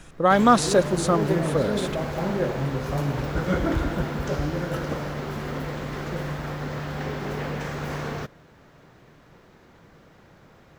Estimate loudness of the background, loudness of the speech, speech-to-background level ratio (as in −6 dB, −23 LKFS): −28.5 LKFS, −21.5 LKFS, 7.0 dB